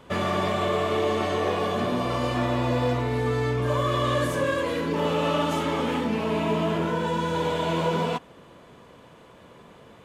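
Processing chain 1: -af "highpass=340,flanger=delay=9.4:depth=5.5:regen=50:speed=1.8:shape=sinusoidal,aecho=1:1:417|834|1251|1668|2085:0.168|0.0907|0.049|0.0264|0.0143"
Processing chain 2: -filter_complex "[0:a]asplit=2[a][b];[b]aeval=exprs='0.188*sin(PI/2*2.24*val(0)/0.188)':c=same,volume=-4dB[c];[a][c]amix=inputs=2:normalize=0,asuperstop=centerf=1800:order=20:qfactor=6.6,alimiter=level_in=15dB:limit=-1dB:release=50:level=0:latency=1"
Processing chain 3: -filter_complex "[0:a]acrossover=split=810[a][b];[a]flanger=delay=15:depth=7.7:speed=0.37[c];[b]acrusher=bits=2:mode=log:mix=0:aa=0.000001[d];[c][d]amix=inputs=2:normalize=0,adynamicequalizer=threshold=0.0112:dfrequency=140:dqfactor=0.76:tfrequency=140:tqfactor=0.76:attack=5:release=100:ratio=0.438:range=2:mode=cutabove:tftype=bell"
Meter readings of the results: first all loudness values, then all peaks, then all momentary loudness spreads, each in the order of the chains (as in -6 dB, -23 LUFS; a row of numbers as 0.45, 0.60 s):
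-31.0, -7.5, -28.0 LUFS; -16.0, -1.0, -13.5 dBFS; 4, 18, 3 LU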